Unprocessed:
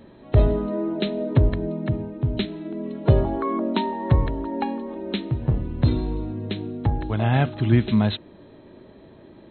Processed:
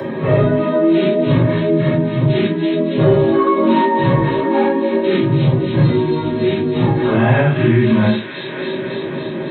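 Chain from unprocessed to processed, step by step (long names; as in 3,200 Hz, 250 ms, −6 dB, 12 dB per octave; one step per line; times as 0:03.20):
random phases in long frames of 200 ms
delay with a high-pass on its return 278 ms, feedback 62%, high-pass 2,500 Hz, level −4 dB
convolution reverb RT60 0.15 s, pre-delay 3 ms, DRR 3 dB
in parallel at −0.5 dB: brickwall limiter −9 dBFS, peak gain reduction 8.5 dB
on the sum: multiband upward and downward compressor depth 70%
level −2.5 dB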